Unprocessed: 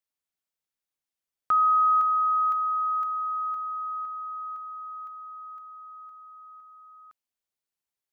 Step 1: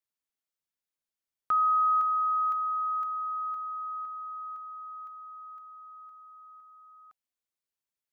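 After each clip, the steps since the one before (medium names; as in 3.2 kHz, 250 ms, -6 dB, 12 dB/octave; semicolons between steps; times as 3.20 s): band-stop 760 Hz, Q 16; trim -3.5 dB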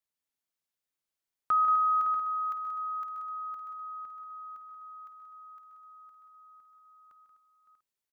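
multi-tap echo 148/181/252/561/640/694 ms -12.5/-10/-12.5/-13/-11.5/-18 dB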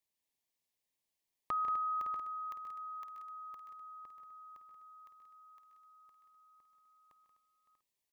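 Butterworth band-stop 1.4 kHz, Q 2.5; trim +1.5 dB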